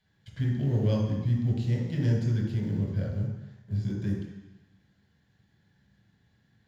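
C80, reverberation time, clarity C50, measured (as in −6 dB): 4.5 dB, 1.0 s, 2.5 dB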